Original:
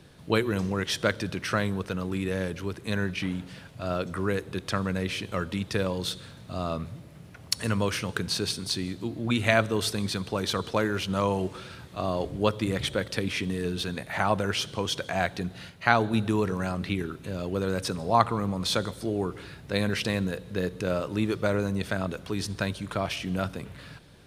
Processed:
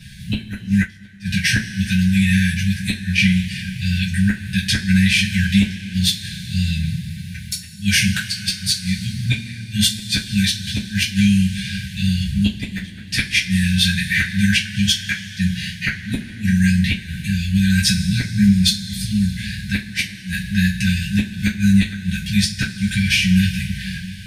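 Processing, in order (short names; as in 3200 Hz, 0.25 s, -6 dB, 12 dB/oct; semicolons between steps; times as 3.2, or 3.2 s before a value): FFT band-reject 230–1500 Hz; flipped gate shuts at -19 dBFS, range -32 dB; reverb, pre-delay 3 ms, DRR -8.5 dB; 0.71–1.31 upward expander 1.5:1, over -42 dBFS; gain +8.5 dB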